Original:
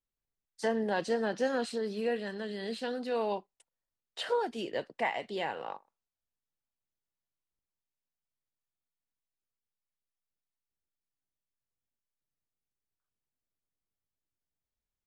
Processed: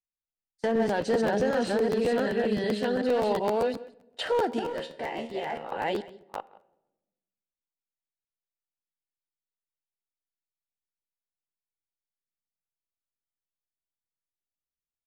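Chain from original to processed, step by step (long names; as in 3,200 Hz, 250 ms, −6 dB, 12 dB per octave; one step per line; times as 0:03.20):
delay that plays each chunk backwards 377 ms, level −2 dB
notch filter 1,100 Hz, Q 13
noise gate −43 dBFS, range −21 dB
high-shelf EQ 2,300 Hz −6.5 dB
brickwall limiter −24.5 dBFS, peak gain reduction 7 dB
hard clipping −26.5 dBFS, distortion −25 dB
0:04.59–0:05.72: tuned comb filter 77 Hz, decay 0.3 s, harmonics all, mix 80%
single-tap delay 172 ms −20 dB
on a send at −19 dB: convolution reverb RT60 1.0 s, pre-delay 5 ms
on the sum: regular buffer underruns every 0.13 s, samples 512, repeat, from 0:00.87
level +8 dB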